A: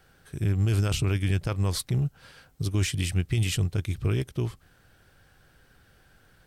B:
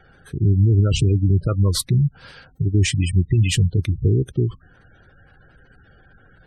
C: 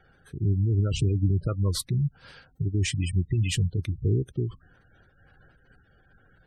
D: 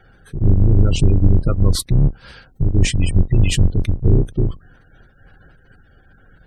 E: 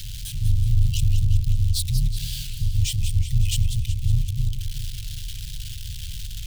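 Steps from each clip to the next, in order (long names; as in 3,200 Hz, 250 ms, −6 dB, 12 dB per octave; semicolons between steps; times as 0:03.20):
gate on every frequency bin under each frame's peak −20 dB strong; level +8.5 dB
amplitude modulation by smooth noise, depth 55%; level −4.5 dB
sub-octave generator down 2 octaves, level +3 dB; level +7.5 dB
converter with a step at zero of −16.5 dBFS; elliptic band-stop filter 120–3,200 Hz, stop band 80 dB; feedback echo with a swinging delay time 185 ms, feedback 60%, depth 219 cents, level −9 dB; level −7.5 dB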